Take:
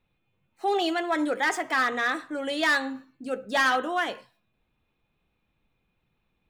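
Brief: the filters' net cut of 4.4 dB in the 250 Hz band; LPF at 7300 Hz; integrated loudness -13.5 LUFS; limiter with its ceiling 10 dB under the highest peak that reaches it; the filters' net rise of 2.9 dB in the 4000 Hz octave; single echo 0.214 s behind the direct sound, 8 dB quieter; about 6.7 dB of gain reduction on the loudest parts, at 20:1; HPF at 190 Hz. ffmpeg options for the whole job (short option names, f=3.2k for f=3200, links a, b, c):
-af "highpass=190,lowpass=7.3k,equalizer=f=250:t=o:g=-5,equalizer=f=4k:t=o:g=4,acompressor=threshold=-25dB:ratio=20,alimiter=level_in=2dB:limit=-24dB:level=0:latency=1,volume=-2dB,aecho=1:1:214:0.398,volume=21dB"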